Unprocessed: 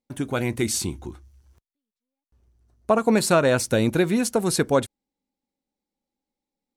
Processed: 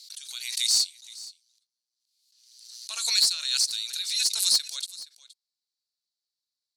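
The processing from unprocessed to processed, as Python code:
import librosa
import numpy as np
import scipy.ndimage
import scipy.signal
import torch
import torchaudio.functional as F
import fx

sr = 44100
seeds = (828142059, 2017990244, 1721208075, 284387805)

y = fx.ladder_bandpass(x, sr, hz=4700.0, resonance_pct=70)
y = fx.tilt_eq(y, sr, slope=4.5)
y = 10.0 ** (-16.0 / 20.0) * np.tanh(y / 10.0 ** (-16.0 / 20.0))
y = y + 10.0 ** (-19.0 / 20.0) * np.pad(y, (int(470 * sr / 1000.0), 0))[:len(y)]
y = fx.pre_swell(y, sr, db_per_s=52.0)
y = y * librosa.db_to_amplitude(3.0)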